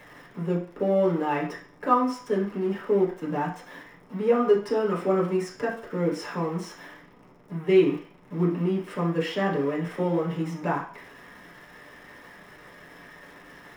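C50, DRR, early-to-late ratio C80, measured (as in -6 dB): 7.5 dB, -6.0 dB, 12.0 dB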